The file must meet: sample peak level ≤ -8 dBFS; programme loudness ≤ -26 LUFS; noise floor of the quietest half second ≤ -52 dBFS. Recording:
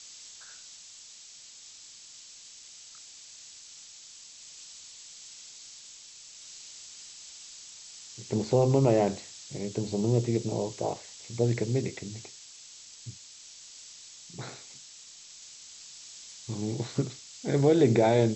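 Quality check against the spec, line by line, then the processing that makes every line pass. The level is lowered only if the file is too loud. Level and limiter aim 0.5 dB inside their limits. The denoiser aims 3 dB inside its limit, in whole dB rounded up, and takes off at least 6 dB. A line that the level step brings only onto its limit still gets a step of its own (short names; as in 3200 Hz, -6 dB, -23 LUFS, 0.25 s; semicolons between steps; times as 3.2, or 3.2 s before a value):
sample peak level -10.0 dBFS: OK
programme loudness -28.0 LUFS: OK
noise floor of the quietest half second -50 dBFS: fail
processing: denoiser 6 dB, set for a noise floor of -50 dBFS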